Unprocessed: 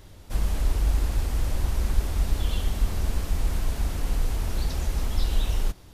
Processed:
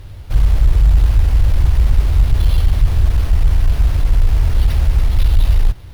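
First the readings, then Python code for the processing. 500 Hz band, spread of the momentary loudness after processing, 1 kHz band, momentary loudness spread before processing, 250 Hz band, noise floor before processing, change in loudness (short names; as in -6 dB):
+4.5 dB, 3 LU, +5.5 dB, 3 LU, +5.0 dB, -47 dBFS, +12.5 dB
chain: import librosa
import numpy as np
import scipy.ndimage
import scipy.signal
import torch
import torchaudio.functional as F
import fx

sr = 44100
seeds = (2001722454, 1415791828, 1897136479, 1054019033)

y = fx.sample_hold(x, sr, seeds[0], rate_hz=7500.0, jitter_pct=0)
y = fx.cheby_harmonics(y, sr, harmonics=(5,), levels_db=(-13,), full_scale_db=-9.0)
y = fx.low_shelf_res(y, sr, hz=150.0, db=8.0, q=1.5)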